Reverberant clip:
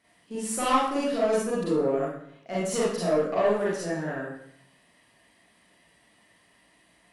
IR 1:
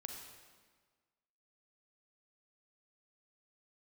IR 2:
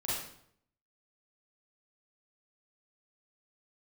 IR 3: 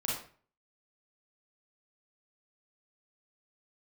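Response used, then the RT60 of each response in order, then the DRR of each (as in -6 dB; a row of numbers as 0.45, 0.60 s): 2; 1.5, 0.65, 0.45 s; 2.5, -9.0, -5.0 dB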